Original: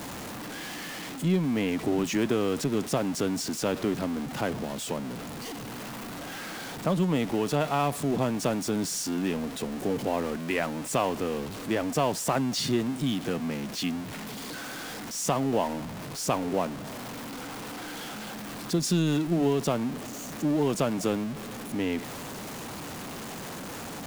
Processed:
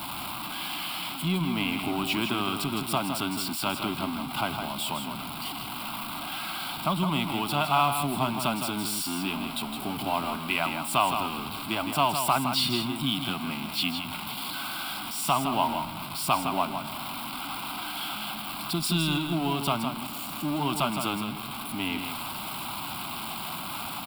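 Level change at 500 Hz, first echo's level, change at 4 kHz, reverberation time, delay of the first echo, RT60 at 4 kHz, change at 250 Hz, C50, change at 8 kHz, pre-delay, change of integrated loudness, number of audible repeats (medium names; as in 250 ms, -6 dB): -6.0 dB, -7.0 dB, +7.0 dB, no reverb, 162 ms, no reverb, -3.0 dB, no reverb, -0.5 dB, no reverb, +1.0 dB, 1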